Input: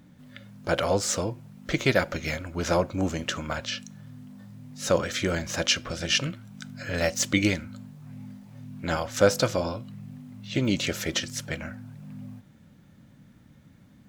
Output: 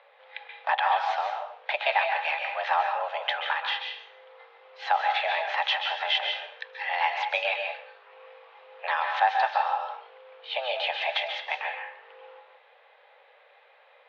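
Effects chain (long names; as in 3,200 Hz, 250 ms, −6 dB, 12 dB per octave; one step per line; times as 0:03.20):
downward compressor 2 to 1, threshold −33 dBFS, peak gain reduction 10.5 dB
convolution reverb RT60 0.55 s, pre-delay 123 ms, DRR 3.5 dB
single-sideband voice off tune +270 Hz 370–3,300 Hz
level +7.5 dB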